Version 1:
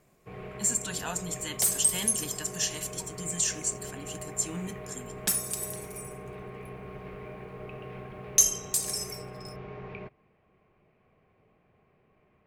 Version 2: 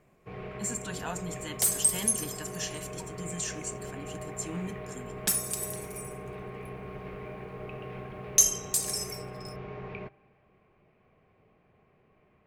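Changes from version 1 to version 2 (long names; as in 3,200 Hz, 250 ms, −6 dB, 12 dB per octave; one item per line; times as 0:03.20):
speech: add high-shelf EQ 2,700 Hz −9.5 dB
reverb: on, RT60 2.4 s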